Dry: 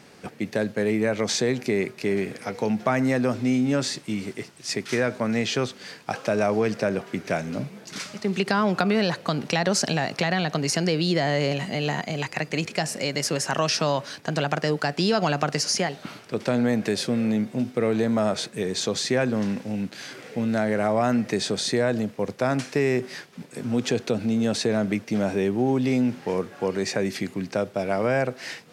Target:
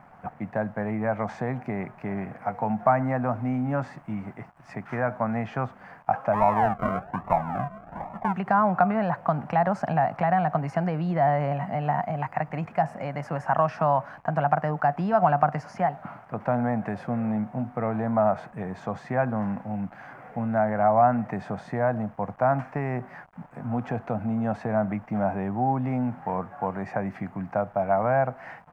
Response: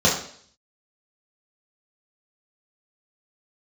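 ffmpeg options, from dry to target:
-filter_complex "[0:a]acrusher=bits=7:mix=0:aa=0.000001,lowshelf=f=220:g=8,asplit=3[s0][s1][s2];[s0]afade=t=out:st=6.32:d=0.02[s3];[s1]acrusher=samples=40:mix=1:aa=0.000001:lfo=1:lforange=24:lforate=1.2,afade=t=in:st=6.32:d=0.02,afade=t=out:st=8.32:d=0.02[s4];[s2]afade=t=in:st=8.32:d=0.02[s5];[s3][s4][s5]amix=inputs=3:normalize=0,firequalizer=gain_entry='entry(170,0);entry(400,-10);entry(720,13);entry(3800,-25)':delay=0.05:min_phase=1,volume=0.531"

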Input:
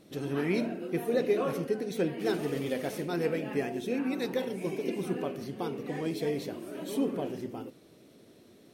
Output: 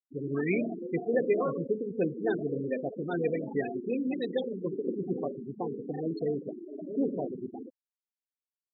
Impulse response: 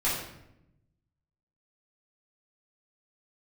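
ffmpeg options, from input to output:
-filter_complex "[0:a]afftfilt=real='re*gte(hypot(re,im),0.0501)':imag='im*gte(hypot(re,im),0.0501)':win_size=1024:overlap=0.75,crystalizer=i=6:c=0,acrossover=split=2700[s0][s1];[s1]acompressor=threshold=0.00501:ratio=4:attack=1:release=60[s2];[s0][s2]amix=inputs=2:normalize=0"

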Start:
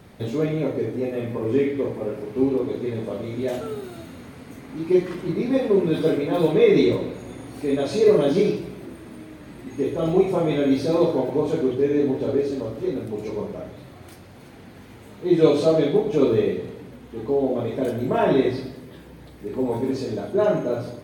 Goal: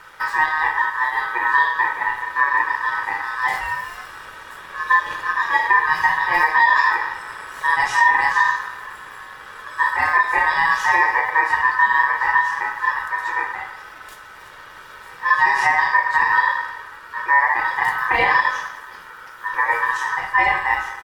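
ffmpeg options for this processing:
-af "aecho=1:1:2.1:0.47,alimiter=limit=0.282:level=0:latency=1:release=206,aeval=exprs='val(0)*sin(2*PI*1400*n/s)':c=same,volume=2.11"

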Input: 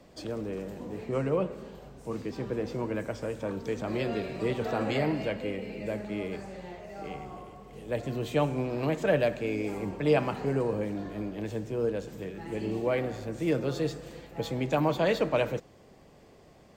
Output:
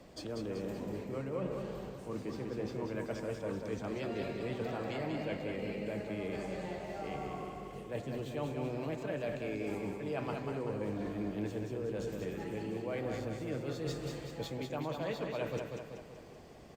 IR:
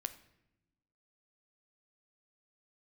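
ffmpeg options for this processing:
-af "areverse,acompressor=threshold=0.0158:ratio=6,areverse,aecho=1:1:191|382|573|764|955|1146|1337:0.562|0.304|0.164|0.0885|0.0478|0.0258|0.0139" -ar 48000 -c:a libopus -b:a 64k

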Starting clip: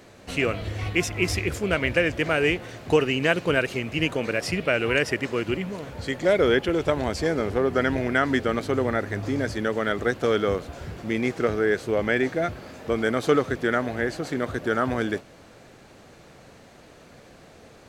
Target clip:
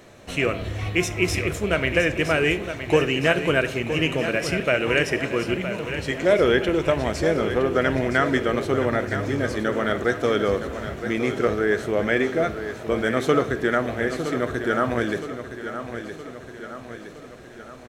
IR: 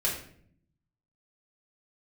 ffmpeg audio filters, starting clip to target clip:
-filter_complex "[0:a]bandreject=f=4700:w=10,aecho=1:1:966|1932|2898|3864|4830|5796:0.316|0.171|0.0922|0.0498|0.0269|0.0145,asplit=2[s0][s1];[1:a]atrim=start_sample=2205[s2];[s1][s2]afir=irnorm=-1:irlink=0,volume=0.15[s3];[s0][s3]amix=inputs=2:normalize=0"

